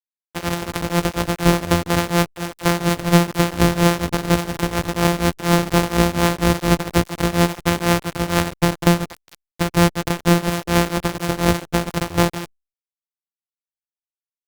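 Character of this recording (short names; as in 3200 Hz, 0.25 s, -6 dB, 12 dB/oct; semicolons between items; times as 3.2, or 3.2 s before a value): a buzz of ramps at a fixed pitch in blocks of 256 samples; tremolo triangle 4.2 Hz, depth 95%; a quantiser's noise floor 6-bit, dither none; Opus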